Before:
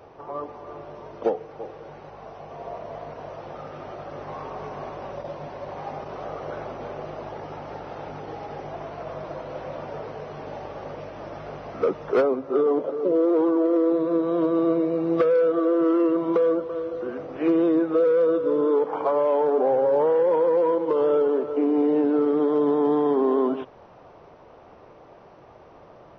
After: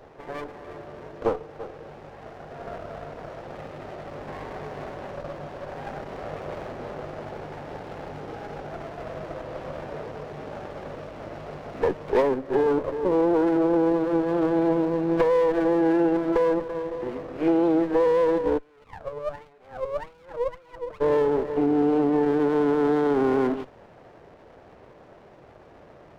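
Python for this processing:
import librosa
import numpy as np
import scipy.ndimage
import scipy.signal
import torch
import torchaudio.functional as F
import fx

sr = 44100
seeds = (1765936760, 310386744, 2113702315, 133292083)

y = fx.wah_lfo(x, sr, hz=fx.line((18.57, 0.87), (21.0, 2.8)), low_hz=470.0, high_hz=2000.0, q=15.0, at=(18.57, 21.0), fade=0.02)
y = fx.running_max(y, sr, window=17)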